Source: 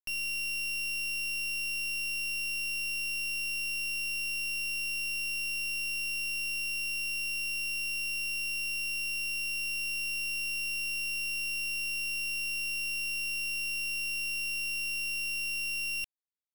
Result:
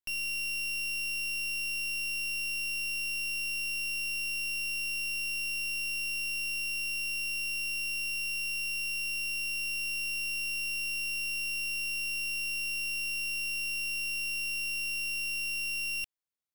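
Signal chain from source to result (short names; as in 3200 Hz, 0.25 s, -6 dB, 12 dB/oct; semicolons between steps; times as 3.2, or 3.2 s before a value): 8.1–9.05 notches 60/120/180/240/300/360/420/480/540/600 Hz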